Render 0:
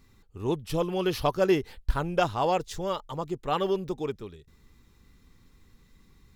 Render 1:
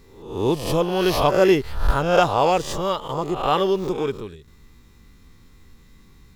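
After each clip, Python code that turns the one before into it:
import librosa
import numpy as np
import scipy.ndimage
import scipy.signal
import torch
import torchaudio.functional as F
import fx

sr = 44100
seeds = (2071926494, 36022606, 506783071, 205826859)

y = fx.spec_swells(x, sr, rise_s=0.67)
y = F.gain(torch.from_numpy(y), 5.5).numpy()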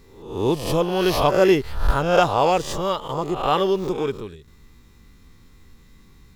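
y = x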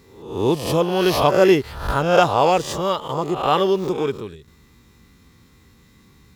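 y = scipy.signal.sosfilt(scipy.signal.butter(2, 71.0, 'highpass', fs=sr, output='sos'), x)
y = F.gain(torch.from_numpy(y), 2.0).numpy()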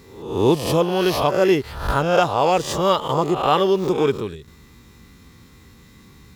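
y = fx.rider(x, sr, range_db=5, speed_s=0.5)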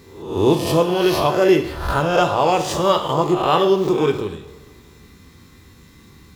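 y = fx.rev_double_slope(x, sr, seeds[0], early_s=0.6, late_s=2.3, knee_db=-18, drr_db=5.0)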